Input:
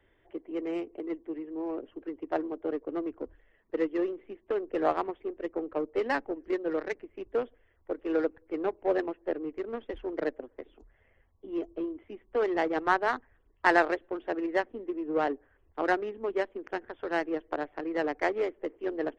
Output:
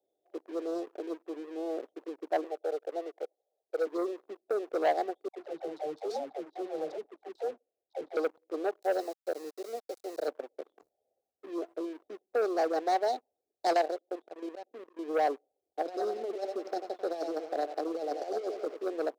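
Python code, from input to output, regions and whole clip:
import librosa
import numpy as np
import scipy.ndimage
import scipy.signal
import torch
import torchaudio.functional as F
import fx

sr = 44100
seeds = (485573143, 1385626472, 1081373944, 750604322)

y = fx.chain(x, sr, fx.highpass(hz=420.0, slope=24),
    fx.peak_eq(hz=1400.0, db=5.0, octaves=1.1), at=(2.44, 3.87))
y = fx.chain(y, sr, fx.lowpass(hz=1400.0, slope=12),
    fx.tube_stage(drive_db=30.0, bias=0.7),
    fx.dispersion(late='lows', ms=114.0, hz=670.0), at=(5.28, 8.17))
y = fx.chain(y, sr, fx.highpass(hz=530.0, slope=6),
    fx.sample_gate(floor_db=-48.0), at=(8.82, 10.28))
y = fx.chain(y, sr, fx.auto_swell(attack_ms=176.0),
    fx.level_steps(step_db=11), at=(13.73, 14.99))
y = fx.chain(y, sr, fx.peak_eq(hz=5300.0, db=4.0, octaves=0.3),
    fx.echo_feedback(ms=91, feedback_pct=54, wet_db=-15.0),
    fx.over_compress(threshold_db=-32.0, ratio=-0.5), at=(15.81, 18.84))
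y = scipy.signal.sosfilt(scipy.signal.cheby1(5, 1.0, [780.0, 3800.0], 'bandstop', fs=sr, output='sos'), y)
y = fx.leveller(y, sr, passes=2)
y = scipy.signal.sosfilt(scipy.signal.butter(2, 580.0, 'highpass', fs=sr, output='sos'), y)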